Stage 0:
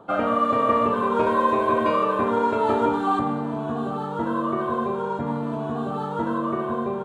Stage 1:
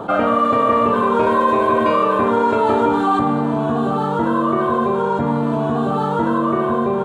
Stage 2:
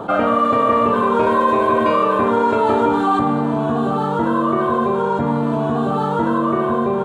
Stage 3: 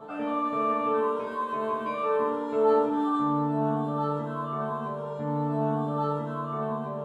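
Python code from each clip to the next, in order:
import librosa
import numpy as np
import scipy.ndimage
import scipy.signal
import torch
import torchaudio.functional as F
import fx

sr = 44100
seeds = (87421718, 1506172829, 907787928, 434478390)

y1 = fx.env_flatten(x, sr, amount_pct=50)
y1 = y1 * librosa.db_to_amplitude(3.5)
y2 = y1
y3 = fx.resonator_bank(y2, sr, root=50, chord='fifth', decay_s=0.42)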